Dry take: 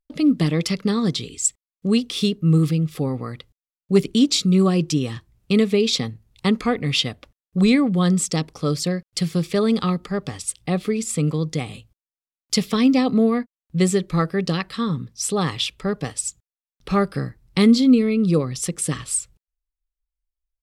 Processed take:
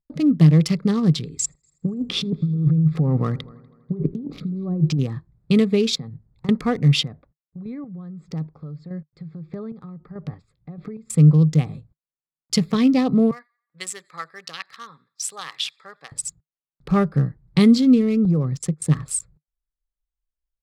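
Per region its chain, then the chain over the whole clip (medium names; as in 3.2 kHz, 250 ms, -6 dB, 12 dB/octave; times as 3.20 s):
1.39–4.99 s: low-pass that closes with the level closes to 810 Hz, closed at -13.5 dBFS + compressor with a negative ratio -26 dBFS + multi-head delay 81 ms, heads first and third, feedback 45%, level -21.5 dB
5.95–6.49 s: compression 12:1, threshold -31 dBFS + tape noise reduction on one side only decoder only
7.03–11.10 s: low-pass 3.5 kHz + compression, threshold -30 dBFS + square tremolo 1.6 Hz, depth 60%, duty 30%
13.31–16.12 s: high-pass 1.4 kHz + feedback echo behind a high-pass 89 ms, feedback 48%, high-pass 2.1 kHz, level -19 dB + tape noise reduction on one side only decoder only
18.25–18.90 s: low-pass 8.7 kHz + compression 16:1, threshold -19 dBFS + gate -32 dBFS, range -22 dB
whole clip: local Wiener filter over 15 samples; peaking EQ 150 Hz +12.5 dB 0.5 oct; trim -1.5 dB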